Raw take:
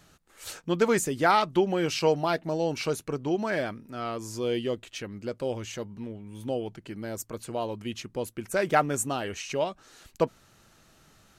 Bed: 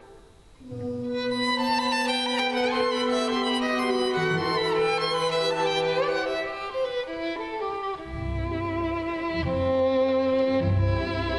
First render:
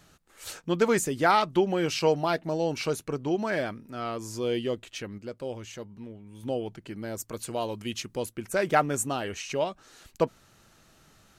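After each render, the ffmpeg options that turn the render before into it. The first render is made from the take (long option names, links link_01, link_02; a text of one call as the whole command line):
ffmpeg -i in.wav -filter_complex "[0:a]asettb=1/sr,asplit=3[link_01][link_02][link_03];[link_01]atrim=end=7.284[link_04];[link_02]atrim=start=7.28:end=8.26,asetpts=PTS-STARTPTS,afade=type=in:duration=0.004:curve=qsin,afade=type=out:start_time=0.976:duration=0.004:curve=qsin,highshelf=frequency=2900:gain=7[link_05];[link_03]atrim=start=8.256[link_06];[link_04][link_05]acrossfade=duration=0.004:curve1=hsin:curve2=qsin[link_07];[link_07][link_06]acrossfade=duration=0.004:curve1=qsin:curve2=hsin,asplit=3[link_08][link_09][link_10];[link_08]atrim=end=5.182[link_11];[link_09]atrim=start=5.178:end=6.432,asetpts=PTS-STARTPTS,volume=-4.5dB[link_12];[link_10]atrim=start=6.428[link_13];[link_11][link_12]acrossfade=duration=0.004:curve1=hsin:curve2=hsin[link_14];[link_14][link_13]acrossfade=duration=0.004:curve1=hsin:curve2=hsin" out.wav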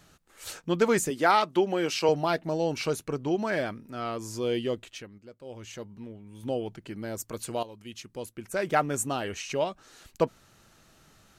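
ffmpeg -i in.wav -filter_complex "[0:a]asettb=1/sr,asplit=3[link_01][link_02][link_03];[link_01]atrim=end=1.104[link_04];[link_02]atrim=start=1.1:end=2.09,asetpts=PTS-STARTPTS,afade=type=in:duration=0.004:curve=qsin,afade=type=out:start_time=0.986:duration=0.004:curve=qsin,highpass=220[link_05];[link_03]atrim=start=2.086[link_06];[link_04][link_05]acrossfade=duration=0.004:curve1=hsin:curve2=qsin[link_07];[link_07][link_06]acrossfade=duration=0.004:curve1=qsin:curve2=hsin,asplit=4[link_08][link_09][link_10][link_11];[link_08]atrim=end=5.1,asetpts=PTS-STARTPTS,afade=type=out:start_time=4.83:duration=0.27:silence=0.298538[link_12];[link_09]atrim=start=5.1:end=5.44,asetpts=PTS-STARTPTS,volume=-10.5dB[link_13];[link_10]atrim=start=5.44:end=7.63,asetpts=PTS-STARTPTS,afade=type=in:duration=0.27:silence=0.298538,afade=type=out:start_time=2.186:duration=0.004:curve=hsin:silence=0.211349[link_14];[link_11]atrim=start=7.63,asetpts=PTS-STARTPTS,afade=type=in:duration=1.53:silence=0.211349[link_15];[link_12][link_13][link_14][link_15]concat=n=4:v=0:a=1" out.wav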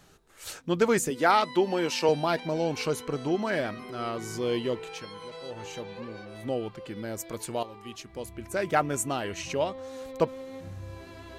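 ffmpeg -i in.wav -i bed.wav -filter_complex "[1:a]volume=-18dB[link_01];[0:a][link_01]amix=inputs=2:normalize=0" out.wav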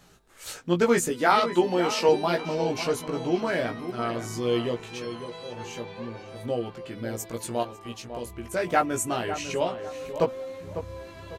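ffmpeg -i in.wav -filter_complex "[0:a]asplit=2[link_01][link_02];[link_02]adelay=17,volume=-3.5dB[link_03];[link_01][link_03]amix=inputs=2:normalize=0,asplit=2[link_04][link_05];[link_05]adelay=550,lowpass=frequency=2000:poles=1,volume=-10dB,asplit=2[link_06][link_07];[link_07]adelay=550,lowpass=frequency=2000:poles=1,volume=0.3,asplit=2[link_08][link_09];[link_09]adelay=550,lowpass=frequency=2000:poles=1,volume=0.3[link_10];[link_04][link_06][link_08][link_10]amix=inputs=4:normalize=0" out.wav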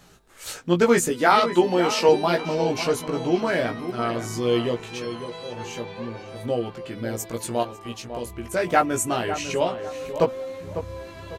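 ffmpeg -i in.wav -af "volume=3.5dB,alimiter=limit=-3dB:level=0:latency=1" out.wav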